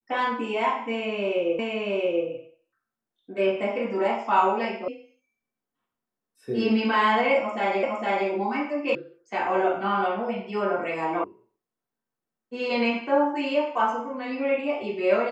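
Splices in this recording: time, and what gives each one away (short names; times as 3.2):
1.59 repeat of the last 0.68 s
4.88 sound cut off
7.83 repeat of the last 0.46 s
8.95 sound cut off
11.24 sound cut off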